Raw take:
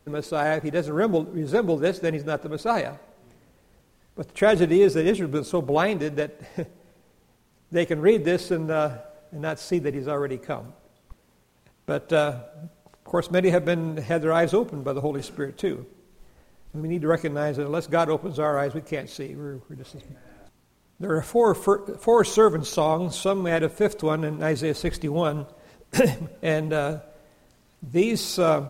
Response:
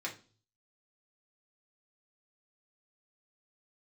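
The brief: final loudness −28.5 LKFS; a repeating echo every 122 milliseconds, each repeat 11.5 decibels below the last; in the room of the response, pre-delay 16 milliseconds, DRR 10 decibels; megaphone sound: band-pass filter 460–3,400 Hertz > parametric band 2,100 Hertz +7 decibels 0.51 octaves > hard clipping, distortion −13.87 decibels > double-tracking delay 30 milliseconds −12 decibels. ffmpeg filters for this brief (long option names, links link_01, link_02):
-filter_complex "[0:a]aecho=1:1:122|244|366:0.266|0.0718|0.0194,asplit=2[link_01][link_02];[1:a]atrim=start_sample=2205,adelay=16[link_03];[link_02][link_03]afir=irnorm=-1:irlink=0,volume=-12.5dB[link_04];[link_01][link_04]amix=inputs=2:normalize=0,highpass=460,lowpass=3400,equalizer=frequency=2100:width_type=o:width=0.51:gain=7,asoftclip=type=hard:threshold=-17.5dB,asplit=2[link_05][link_06];[link_06]adelay=30,volume=-12dB[link_07];[link_05][link_07]amix=inputs=2:normalize=0,volume=-1.5dB"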